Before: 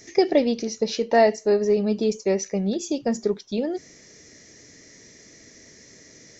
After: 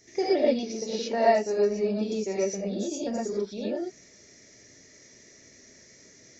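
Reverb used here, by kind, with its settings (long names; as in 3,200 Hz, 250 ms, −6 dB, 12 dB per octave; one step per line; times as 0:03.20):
reverb whose tail is shaped and stops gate 140 ms rising, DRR −6.5 dB
level −11.5 dB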